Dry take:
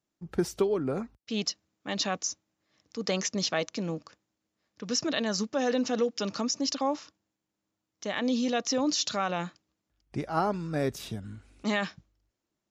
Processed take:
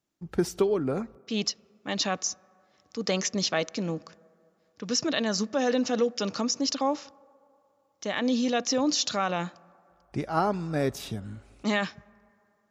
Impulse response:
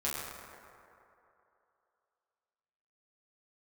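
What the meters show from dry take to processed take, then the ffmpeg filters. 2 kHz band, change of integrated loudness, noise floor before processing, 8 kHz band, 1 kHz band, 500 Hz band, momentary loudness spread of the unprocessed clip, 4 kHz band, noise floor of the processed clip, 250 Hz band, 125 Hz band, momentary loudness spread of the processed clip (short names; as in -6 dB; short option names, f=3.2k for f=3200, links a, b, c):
+2.0 dB, +2.0 dB, -85 dBFS, +2.0 dB, +2.0 dB, +2.0 dB, 12 LU, +2.0 dB, -70 dBFS, +2.0 dB, +2.0 dB, 12 LU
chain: -filter_complex "[0:a]asplit=2[a][b];[1:a]atrim=start_sample=2205,lowpass=2.4k,adelay=53[c];[b][c]afir=irnorm=-1:irlink=0,volume=-29.5dB[d];[a][d]amix=inputs=2:normalize=0,volume=2dB"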